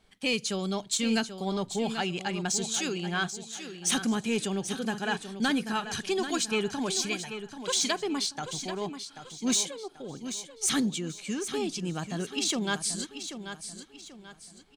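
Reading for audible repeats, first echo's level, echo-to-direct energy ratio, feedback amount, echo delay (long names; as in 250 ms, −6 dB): 3, −10.0 dB, −9.5 dB, 36%, 786 ms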